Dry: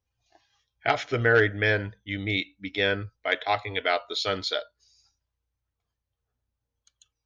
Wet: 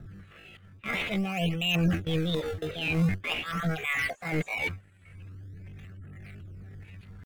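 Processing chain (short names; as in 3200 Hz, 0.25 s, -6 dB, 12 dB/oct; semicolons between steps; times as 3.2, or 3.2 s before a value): zero-crossing step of -23 dBFS; spectral gate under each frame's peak -25 dB strong; gate with hold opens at -21 dBFS; LFO low-pass saw up 1.7 Hz 730–1900 Hz; wow and flutter 23 cents; high shelf 3800 Hz +7 dB; reverse; compressor 12:1, threshold -26 dBFS, peak gain reduction 15 dB; reverse; low shelf 100 Hz +7 dB; fixed phaser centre 1400 Hz, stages 4; in parallel at -7.5 dB: decimation with a swept rate 36×, swing 160% 0.45 Hz; on the sum: pitch shift +8.5 st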